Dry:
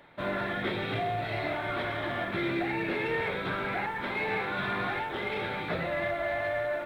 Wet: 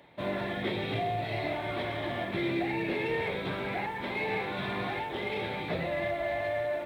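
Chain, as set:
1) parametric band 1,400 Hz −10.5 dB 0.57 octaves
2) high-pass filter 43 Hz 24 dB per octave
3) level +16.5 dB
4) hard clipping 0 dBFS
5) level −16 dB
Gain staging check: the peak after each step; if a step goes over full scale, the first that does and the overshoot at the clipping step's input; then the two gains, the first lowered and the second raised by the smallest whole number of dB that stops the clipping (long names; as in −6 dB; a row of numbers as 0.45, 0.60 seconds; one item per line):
−20.0, −20.0, −3.5, −3.5, −19.5 dBFS
no step passes full scale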